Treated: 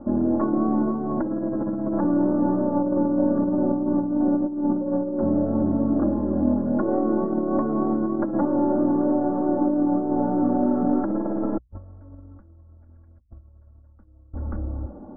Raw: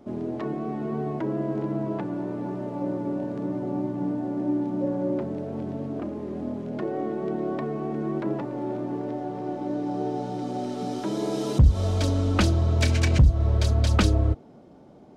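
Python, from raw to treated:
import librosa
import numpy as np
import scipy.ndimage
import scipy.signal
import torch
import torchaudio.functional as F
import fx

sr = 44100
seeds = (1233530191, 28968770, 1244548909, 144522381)

p1 = fx.tracing_dist(x, sr, depth_ms=0.2)
p2 = fx.low_shelf(p1, sr, hz=110.0, db=11.0)
p3 = p2 + fx.echo_single(p2, sr, ms=532, db=-22.5, dry=0)
p4 = fx.over_compress(p3, sr, threshold_db=-28.0, ratio=-0.5)
p5 = scipy.signal.sosfilt(scipy.signal.butter(8, 1500.0, 'lowpass', fs=sr, output='sos'), p4)
p6 = fx.hum_notches(p5, sr, base_hz=60, count=2)
y = p6 + 0.71 * np.pad(p6, (int(3.6 * sr / 1000.0), 0))[:len(p6)]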